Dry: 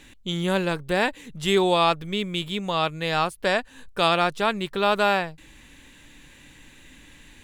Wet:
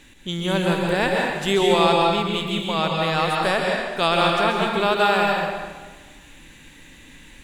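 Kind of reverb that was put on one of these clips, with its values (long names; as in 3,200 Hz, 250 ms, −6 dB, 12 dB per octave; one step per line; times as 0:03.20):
dense smooth reverb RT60 1.4 s, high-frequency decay 0.85×, pre-delay 115 ms, DRR −1 dB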